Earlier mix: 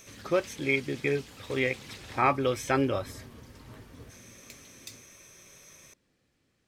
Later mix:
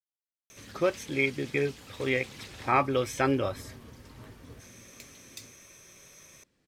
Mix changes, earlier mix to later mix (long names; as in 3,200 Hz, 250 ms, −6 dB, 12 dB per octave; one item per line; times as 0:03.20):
speech: entry +0.50 s
background: entry +0.50 s